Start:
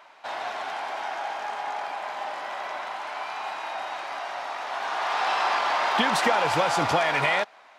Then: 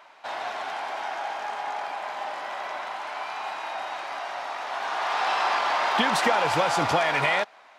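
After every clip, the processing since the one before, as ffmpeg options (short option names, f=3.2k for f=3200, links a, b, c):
-af anull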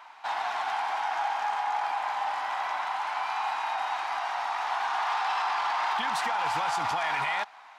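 -af "lowshelf=f=680:t=q:w=3:g=-6,alimiter=limit=-20.5dB:level=0:latency=1:release=38"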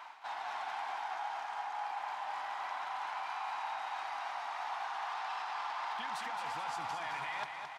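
-af "areverse,acompressor=threshold=-39dB:ratio=5,areverse,aecho=1:1:217|434|651|868|1085|1302|1519:0.473|0.256|0.138|0.0745|0.0402|0.0217|0.0117"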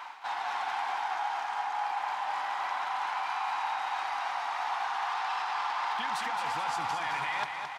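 -af "bandreject=f=650:w=12,volume=7dB"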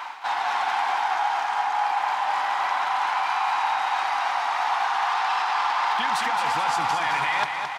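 -af "highpass=93,volume=8.5dB"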